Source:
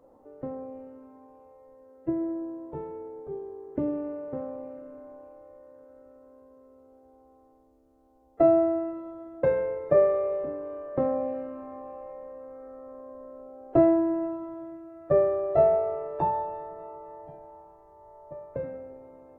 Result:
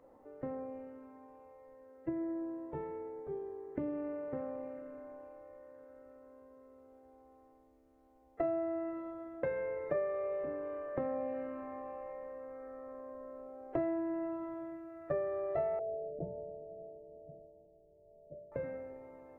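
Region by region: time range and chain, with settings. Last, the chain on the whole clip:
15.79–18.52 s: block-companded coder 3-bit + rippled Chebyshev low-pass 690 Hz, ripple 6 dB
whole clip: peaking EQ 2 kHz +10 dB 0.87 oct; compression 3:1, threshold -31 dBFS; trim -4 dB

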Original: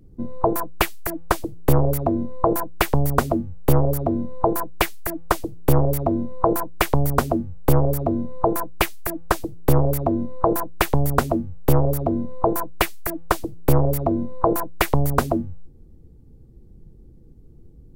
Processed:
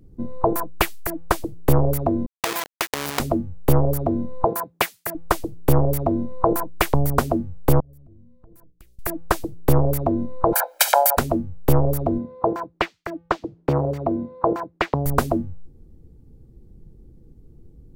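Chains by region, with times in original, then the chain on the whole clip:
2.26–3.20 s: square wave that keeps the level + high-pass 1 kHz 6 dB/octave + compression 2.5:1, threshold -20 dBFS
4.46–5.15 s: high-pass 140 Hz + peaking EQ 330 Hz -8.5 dB 0.28 oct
7.80–8.99 s: amplifier tone stack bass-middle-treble 10-0-1 + hum notches 60/120/180/240/300/360/420/480/540 Hz + compression, threshold -44 dBFS
10.52–11.17 s: spectral peaks clipped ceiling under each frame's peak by 29 dB + elliptic high-pass 500 Hz, stop band 60 dB + comb 1.3 ms, depth 92%
12.18–15.06 s: high-pass 170 Hz 6 dB/octave + distance through air 180 m
whole clip: none

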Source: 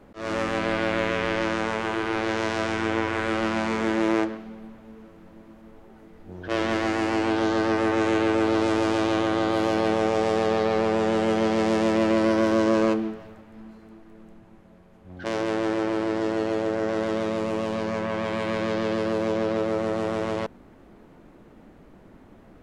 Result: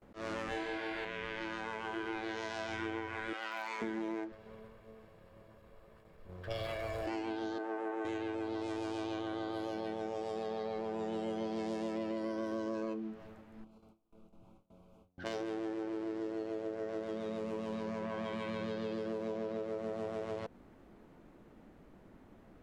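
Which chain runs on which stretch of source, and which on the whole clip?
0.49–1.05 s: band-stop 1.2 kHz, Q 9.3 + flutter echo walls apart 4.2 m, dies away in 0.58 s
3.33–3.82 s: high-pass 640 Hz + hard clipper -15.5 dBFS
4.32–7.07 s: comb filter that takes the minimum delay 1.8 ms + band-stop 6.1 kHz, Q 9.1
7.58–8.05 s: high-pass 360 Hz + peaking EQ 5 kHz -14.5 dB 1.4 oct
13.64–15.18 s: compression 20:1, threshold -46 dBFS + Butterworth band-stop 1.8 kHz, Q 1.7 + doubling 29 ms -6.5 dB
whole clip: gate with hold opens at -43 dBFS; spectral noise reduction 8 dB; compression 12:1, threshold -35 dBFS

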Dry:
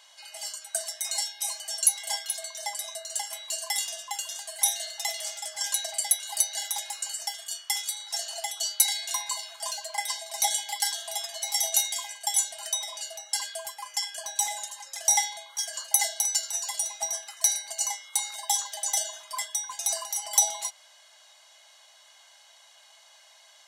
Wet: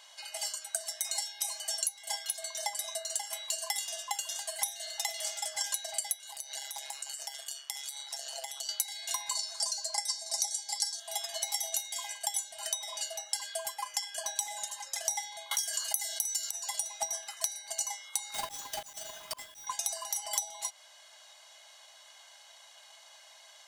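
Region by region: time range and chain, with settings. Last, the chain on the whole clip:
6.31–8.69 s: compression 10:1, threshold -34 dBFS + AM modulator 140 Hz, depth 40%
9.35–11.00 s: low-pass 11 kHz 24 dB/octave + resonant high shelf 3.9 kHz +7 dB, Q 3
15.51–16.51 s: high-pass 1.2 kHz 6 dB/octave + treble shelf 10 kHz +11.5 dB + level flattener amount 50%
18.34–19.67 s: square wave that keeps the level + slow attack 526 ms
whole clip: bass shelf 490 Hz +3 dB; transient shaper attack +4 dB, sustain -1 dB; compression 8:1, threshold -30 dBFS

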